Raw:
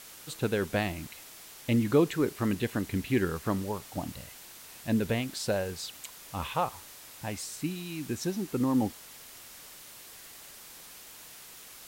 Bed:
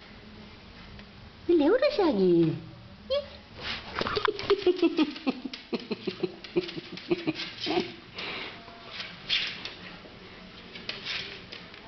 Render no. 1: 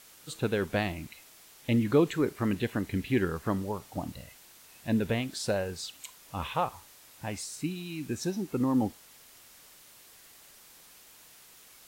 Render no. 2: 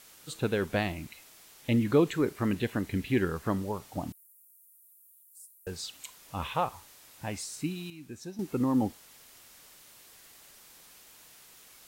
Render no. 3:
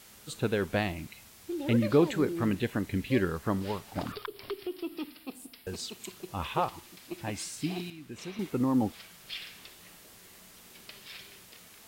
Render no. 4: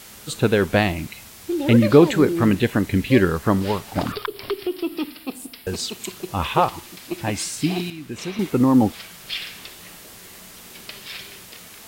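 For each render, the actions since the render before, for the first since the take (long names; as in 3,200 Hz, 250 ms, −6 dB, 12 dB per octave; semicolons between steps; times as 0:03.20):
noise reduction from a noise print 6 dB
0:04.12–0:05.67: inverse Chebyshev high-pass filter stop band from 2,100 Hz, stop band 80 dB; 0:07.90–0:08.39: clip gain −10 dB
mix in bed −13 dB
level +11 dB; brickwall limiter −2 dBFS, peak gain reduction 1 dB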